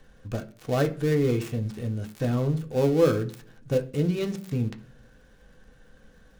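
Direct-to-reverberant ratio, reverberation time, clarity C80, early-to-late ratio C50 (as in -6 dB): 4.0 dB, 0.50 s, 21.0 dB, 16.0 dB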